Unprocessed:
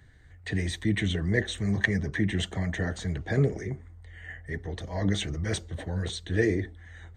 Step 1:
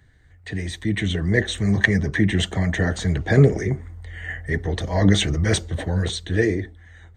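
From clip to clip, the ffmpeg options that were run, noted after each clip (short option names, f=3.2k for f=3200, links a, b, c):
-af "dynaudnorm=f=200:g=11:m=11.5dB"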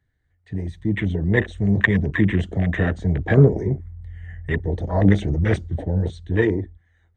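-af "highshelf=f=4.3k:g=-6,afwtdn=0.0447,volume=1dB"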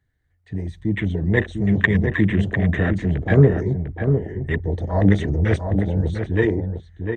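-filter_complex "[0:a]asplit=2[a][b];[b]adelay=699.7,volume=-6dB,highshelf=f=4k:g=-15.7[c];[a][c]amix=inputs=2:normalize=0"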